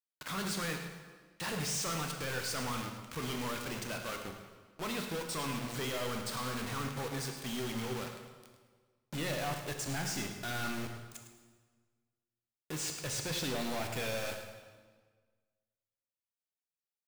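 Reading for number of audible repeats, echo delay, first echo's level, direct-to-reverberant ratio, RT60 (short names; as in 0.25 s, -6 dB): 1, 0.106 s, -11.5 dB, 3.0 dB, 1.5 s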